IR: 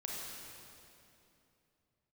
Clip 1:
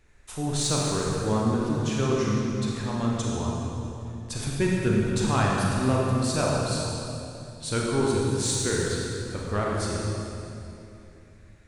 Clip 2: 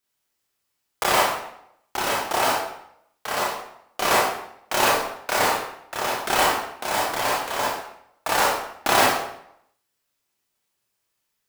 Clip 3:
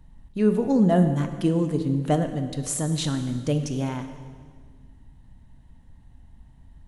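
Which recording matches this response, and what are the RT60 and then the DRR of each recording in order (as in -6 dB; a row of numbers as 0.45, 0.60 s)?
1; 2.9, 0.70, 1.7 s; -3.5, -5.0, 7.5 dB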